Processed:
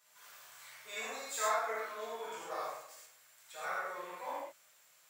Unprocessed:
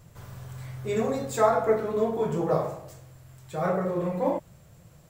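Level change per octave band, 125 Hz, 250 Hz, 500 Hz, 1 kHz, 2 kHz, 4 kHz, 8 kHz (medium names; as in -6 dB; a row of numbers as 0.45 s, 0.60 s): under -35 dB, -28.5 dB, -17.0 dB, -8.0 dB, -0.5 dB, +0.5 dB, 0.0 dB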